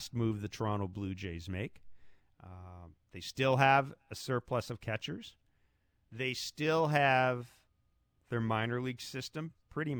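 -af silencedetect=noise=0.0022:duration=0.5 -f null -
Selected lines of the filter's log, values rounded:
silence_start: 5.32
silence_end: 6.12 | silence_duration: 0.80
silence_start: 7.53
silence_end: 8.31 | silence_duration: 0.78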